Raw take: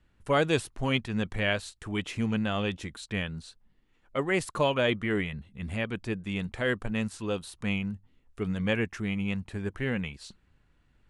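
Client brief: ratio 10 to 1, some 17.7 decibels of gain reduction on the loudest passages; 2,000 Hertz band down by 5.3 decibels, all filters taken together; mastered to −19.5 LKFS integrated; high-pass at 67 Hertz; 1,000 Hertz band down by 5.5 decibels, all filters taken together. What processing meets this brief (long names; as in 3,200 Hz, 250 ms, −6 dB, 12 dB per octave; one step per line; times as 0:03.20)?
high-pass filter 67 Hz
parametric band 1,000 Hz −6 dB
parametric band 2,000 Hz −5 dB
downward compressor 10 to 1, threshold −41 dBFS
level +26.5 dB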